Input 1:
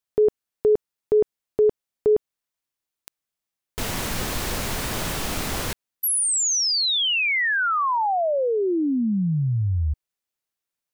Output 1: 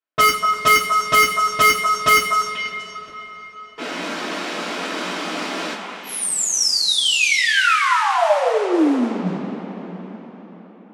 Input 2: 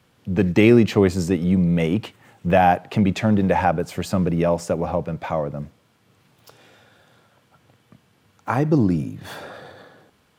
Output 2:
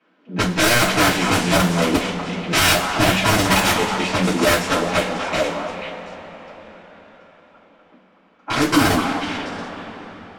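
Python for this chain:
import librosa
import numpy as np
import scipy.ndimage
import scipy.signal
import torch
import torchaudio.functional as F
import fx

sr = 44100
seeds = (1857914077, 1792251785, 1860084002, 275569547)

y = scipy.signal.sosfilt(scipy.signal.ellip(6, 1.0, 80, 180.0, 'highpass', fs=sr, output='sos'), x)
y = (np.mod(10.0 ** (14.0 / 20.0) * y + 1.0, 2.0) - 1.0) / 10.0 ** (14.0 / 20.0)
y = fx.echo_stepped(y, sr, ms=244, hz=1000.0, octaves=1.4, feedback_pct=70, wet_db=-2.5)
y = fx.rev_double_slope(y, sr, seeds[0], early_s=0.22, late_s=4.9, knee_db=-20, drr_db=-9.0)
y = fx.env_lowpass(y, sr, base_hz=2300.0, full_db=-7.0)
y = y * librosa.db_to_amplitude(-5.0)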